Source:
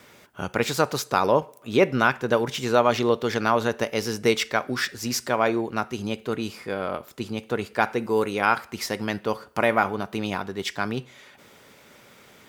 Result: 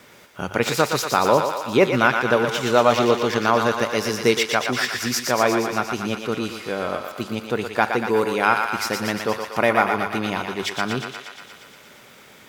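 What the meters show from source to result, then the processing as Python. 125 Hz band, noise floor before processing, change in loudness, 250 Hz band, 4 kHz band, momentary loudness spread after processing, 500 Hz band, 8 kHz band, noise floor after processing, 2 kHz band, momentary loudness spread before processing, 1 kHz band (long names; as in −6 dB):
+2.0 dB, −52 dBFS, +3.5 dB, +3.0 dB, +4.5 dB, 10 LU, +3.5 dB, +5.0 dB, −48 dBFS, +4.5 dB, 9 LU, +4.0 dB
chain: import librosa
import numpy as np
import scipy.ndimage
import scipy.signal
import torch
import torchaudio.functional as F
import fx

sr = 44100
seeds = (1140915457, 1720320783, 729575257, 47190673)

p1 = fx.hum_notches(x, sr, base_hz=50, count=2)
p2 = p1 + fx.echo_thinned(p1, sr, ms=118, feedback_pct=74, hz=560.0, wet_db=-5.0, dry=0)
y = p2 * librosa.db_to_amplitude(2.5)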